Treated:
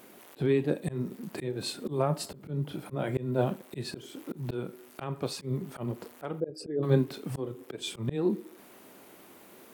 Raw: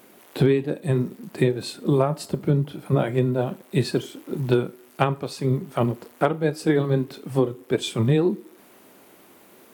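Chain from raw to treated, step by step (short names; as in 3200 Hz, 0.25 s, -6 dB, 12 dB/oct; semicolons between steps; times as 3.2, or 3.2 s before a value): 6.4–6.83 formant sharpening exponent 2; auto swell 0.267 s; gain -1.5 dB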